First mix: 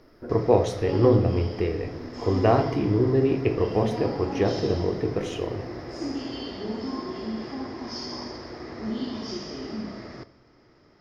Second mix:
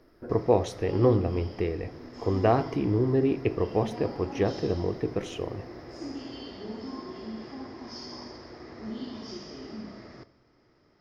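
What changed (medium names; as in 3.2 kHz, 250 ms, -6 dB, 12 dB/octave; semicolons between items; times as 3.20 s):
speech: send -11.0 dB; background -6.5 dB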